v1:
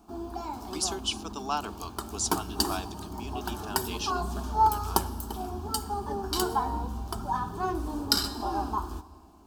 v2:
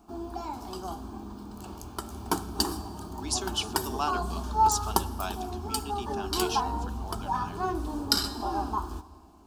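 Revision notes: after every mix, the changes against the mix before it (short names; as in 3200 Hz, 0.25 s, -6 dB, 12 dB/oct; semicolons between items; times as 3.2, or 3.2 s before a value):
speech: entry +2.50 s; master: add bell 16000 Hz -11 dB 0.23 oct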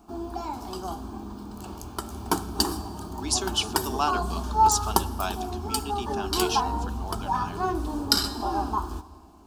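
speech +4.5 dB; background +3.0 dB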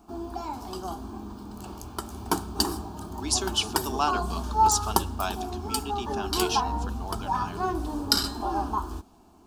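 reverb: off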